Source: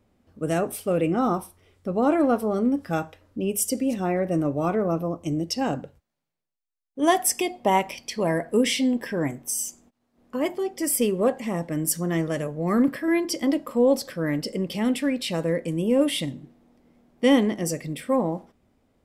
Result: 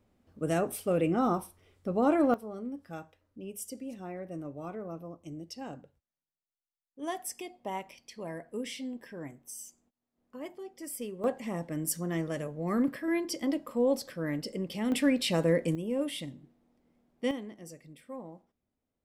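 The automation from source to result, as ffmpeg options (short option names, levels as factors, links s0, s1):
-af "asetnsamples=n=441:p=0,asendcmd='2.34 volume volume -16dB;11.24 volume volume -7.5dB;14.92 volume volume -1dB;15.75 volume volume -11dB;17.31 volume volume -20dB',volume=0.596"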